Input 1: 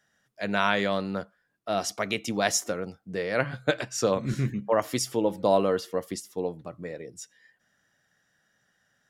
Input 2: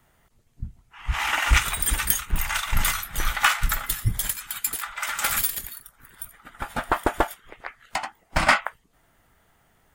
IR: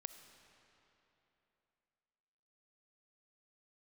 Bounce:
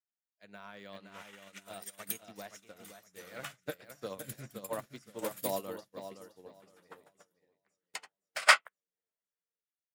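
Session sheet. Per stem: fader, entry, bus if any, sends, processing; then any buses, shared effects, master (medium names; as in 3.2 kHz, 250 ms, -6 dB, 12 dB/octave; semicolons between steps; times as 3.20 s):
-3.0 dB, 0.00 s, no send, echo send -4 dB, de-esser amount 100%
+2.0 dB, 0.00 s, no send, no echo send, elliptic high-pass 460 Hz; rotary cabinet horn 0.85 Hz; auto duck -13 dB, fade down 1.85 s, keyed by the first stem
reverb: none
echo: feedback delay 519 ms, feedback 49%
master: treble shelf 2.3 kHz +10 dB; upward expansion 2.5:1, over -44 dBFS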